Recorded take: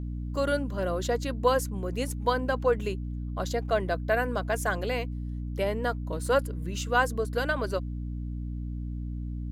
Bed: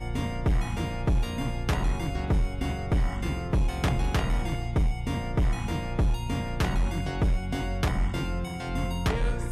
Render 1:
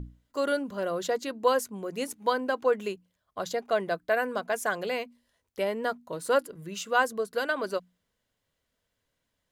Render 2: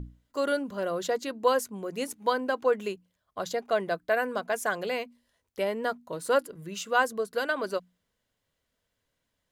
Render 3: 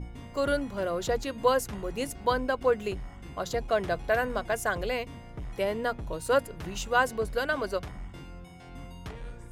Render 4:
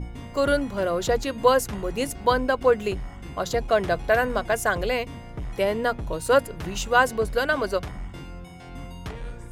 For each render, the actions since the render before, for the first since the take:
hum notches 60/120/180/240/300 Hz
no audible change
add bed -14.5 dB
trim +5.5 dB

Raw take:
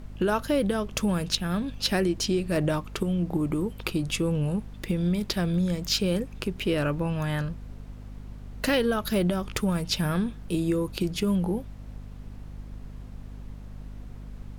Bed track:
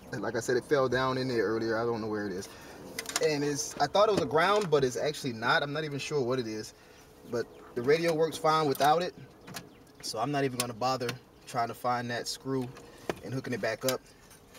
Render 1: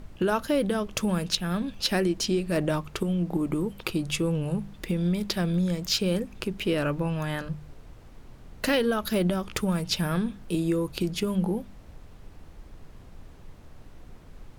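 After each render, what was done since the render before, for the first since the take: de-hum 50 Hz, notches 5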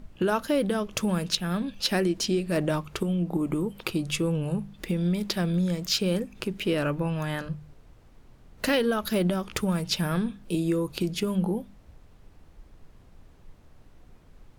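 noise print and reduce 6 dB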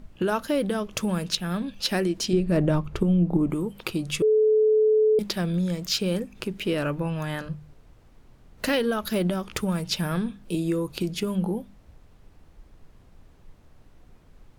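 2.33–3.50 s: tilt EQ -2.5 dB/octave; 4.22–5.19 s: bleep 432 Hz -16 dBFS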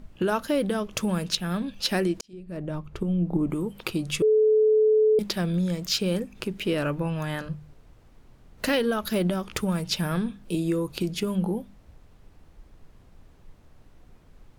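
2.21–3.76 s: fade in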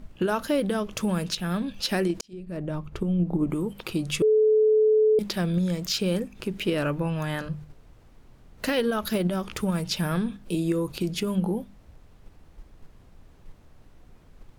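in parallel at -3 dB: level held to a coarse grid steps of 23 dB; on the sum: peak limiter -16 dBFS, peak gain reduction 8.5 dB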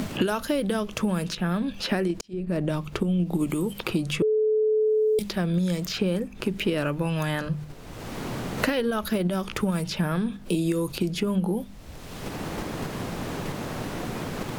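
three bands compressed up and down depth 100%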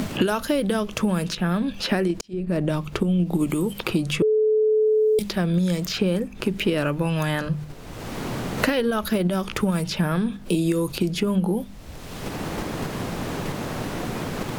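trim +3 dB

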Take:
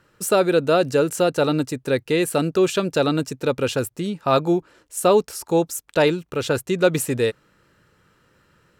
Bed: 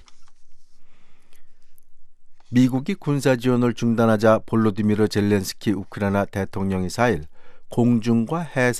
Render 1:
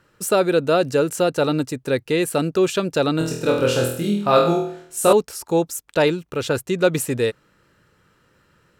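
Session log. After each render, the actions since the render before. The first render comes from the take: 3.18–5.13 s: flutter echo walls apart 4.2 m, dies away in 0.6 s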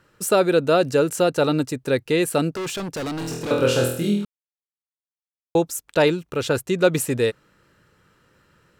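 2.52–3.51 s: overload inside the chain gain 26 dB; 4.25–5.55 s: mute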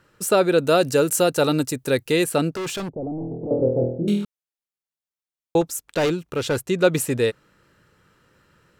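0.58–2.24 s: treble shelf 6.7 kHz +12 dB; 2.89–4.08 s: elliptic low-pass 730 Hz, stop band 60 dB; 5.61–6.69 s: hard clipper -17 dBFS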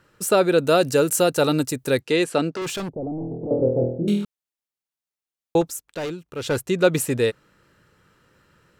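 2.01–2.62 s: band-pass 180–6700 Hz; 5.67–6.52 s: dip -8 dB, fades 0.17 s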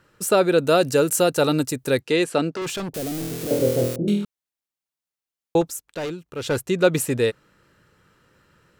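2.94–3.96 s: zero-crossing glitches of -18 dBFS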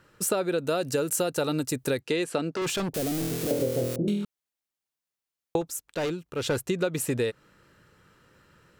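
compression 10:1, threshold -23 dBFS, peak gain reduction 12.5 dB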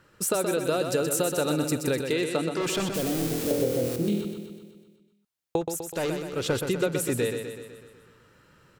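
feedback delay 125 ms, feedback 58%, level -6.5 dB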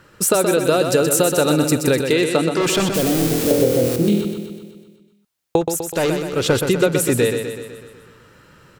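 trim +9.5 dB

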